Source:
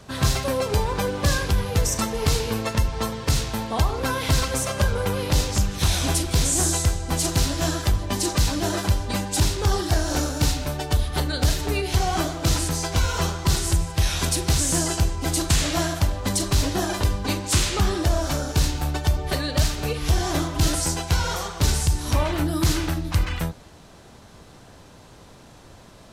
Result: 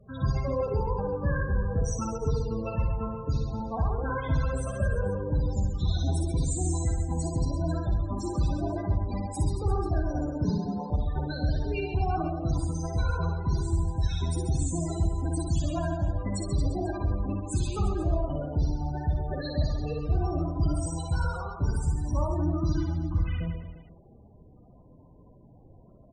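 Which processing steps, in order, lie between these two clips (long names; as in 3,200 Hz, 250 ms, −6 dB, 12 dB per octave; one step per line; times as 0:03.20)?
spectral peaks only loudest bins 16
0:10.44–0:10.90: frequency shifter +130 Hz
reverse bouncing-ball delay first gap 60 ms, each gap 1.25×, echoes 5
level −6.5 dB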